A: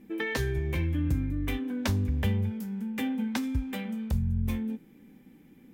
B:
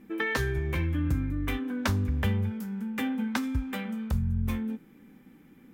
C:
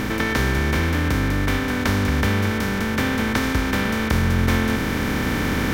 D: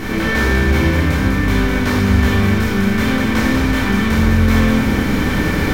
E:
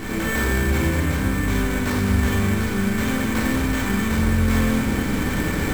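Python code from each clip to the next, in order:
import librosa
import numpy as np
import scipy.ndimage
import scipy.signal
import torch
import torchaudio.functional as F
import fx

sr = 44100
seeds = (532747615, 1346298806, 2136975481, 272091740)

y1 = fx.peak_eq(x, sr, hz=1300.0, db=8.0, octaves=0.82)
y2 = fx.bin_compress(y1, sr, power=0.2)
y2 = fx.rider(y2, sr, range_db=10, speed_s=2.0)
y2 = y2 * 10.0 ** (2.0 / 20.0)
y3 = fx.room_shoebox(y2, sr, seeds[0], volume_m3=390.0, walls='mixed', distance_m=3.4)
y3 = y3 * 10.0 ** (-5.0 / 20.0)
y4 = fx.sample_hold(y3, sr, seeds[1], rate_hz=9800.0, jitter_pct=0)
y4 = y4 * 10.0 ** (-6.0 / 20.0)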